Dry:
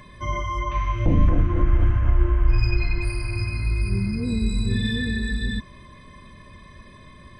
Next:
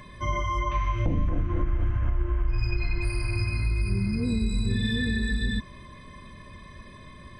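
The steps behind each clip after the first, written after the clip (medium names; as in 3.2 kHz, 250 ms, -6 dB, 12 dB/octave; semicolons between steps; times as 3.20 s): compression 6:1, threshold -21 dBFS, peak gain reduction 9.5 dB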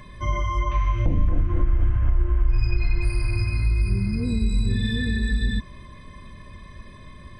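bass shelf 83 Hz +7.5 dB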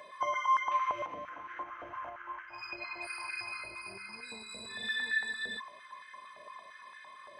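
step-sequenced high-pass 8.8 Hz 610–1600 Hz; trim -5.5 dB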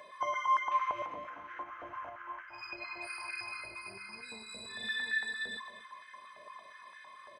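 delay 245 ms -13 dB; trim -1.5 dB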